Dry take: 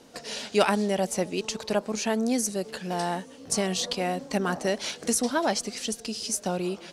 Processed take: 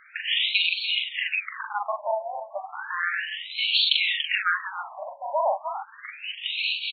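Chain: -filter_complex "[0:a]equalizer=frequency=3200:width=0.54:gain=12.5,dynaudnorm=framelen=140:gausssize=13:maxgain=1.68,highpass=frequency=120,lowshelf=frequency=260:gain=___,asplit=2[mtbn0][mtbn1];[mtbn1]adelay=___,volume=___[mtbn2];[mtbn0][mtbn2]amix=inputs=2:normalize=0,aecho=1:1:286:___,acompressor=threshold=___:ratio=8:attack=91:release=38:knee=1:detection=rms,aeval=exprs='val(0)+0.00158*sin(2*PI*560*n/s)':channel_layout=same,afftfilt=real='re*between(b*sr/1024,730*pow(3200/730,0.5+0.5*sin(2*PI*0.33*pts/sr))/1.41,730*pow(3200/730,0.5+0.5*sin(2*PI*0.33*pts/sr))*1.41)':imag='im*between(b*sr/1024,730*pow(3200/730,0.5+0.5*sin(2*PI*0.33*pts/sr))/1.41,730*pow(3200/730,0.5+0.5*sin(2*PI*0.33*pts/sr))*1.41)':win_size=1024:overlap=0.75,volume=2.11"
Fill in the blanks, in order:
-6, 41, 0.708, 0.237, 0.0355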